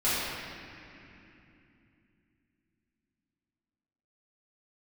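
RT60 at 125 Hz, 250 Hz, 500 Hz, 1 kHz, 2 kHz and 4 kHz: 4.2 s, 4.3 s, 3.1 s, 2.7 s, 3.1 s, 2.2 s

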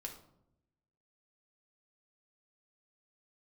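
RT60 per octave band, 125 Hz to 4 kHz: 1.3 s, 1.1 s, 0.90 s, 0.70 s, 0.45 s, 0.40 s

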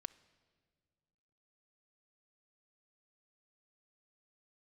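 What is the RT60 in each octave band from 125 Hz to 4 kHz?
2.5 s, 2.3 s, 2.1 s, 1.8 s, 1.5 s, 1.5 s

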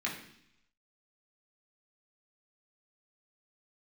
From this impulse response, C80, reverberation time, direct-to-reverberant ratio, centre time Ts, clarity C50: 10.0 dB, 0.70 s, -4.0 dB, 29 ms, 6.5 dB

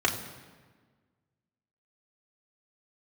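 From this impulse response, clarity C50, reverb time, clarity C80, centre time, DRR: 9.5 dB, 1.5 s, 10.5 dB, 24 ms, -1.5 dB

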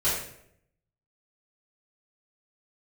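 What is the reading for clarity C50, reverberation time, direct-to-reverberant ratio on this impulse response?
2.0 dB, 0.75 s, -13.0 dB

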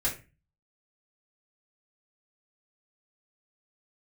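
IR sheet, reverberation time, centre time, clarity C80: 0.30 s, 21 ms, 16.0 dB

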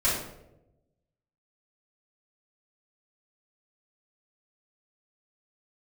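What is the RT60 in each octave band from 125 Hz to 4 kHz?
1.4 s, 1.1 s, 1.1 s, 0.75 s, 0.60 s, 0.50 s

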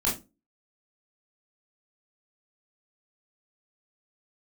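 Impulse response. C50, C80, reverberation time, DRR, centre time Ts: 9.0 dB, 17.5 dB, 0.25 s, -5.5 dB, 29 ms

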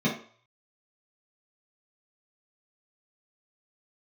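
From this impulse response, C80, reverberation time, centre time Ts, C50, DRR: 12.0 dB, 0.50 s, 27 ms, 6.5 dB, -6.5 dB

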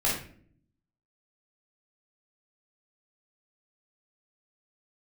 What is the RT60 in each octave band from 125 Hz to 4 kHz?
1.0 s, 0.95 s, 0.65 s, 0.45 s, 0.45 s, 0.35 s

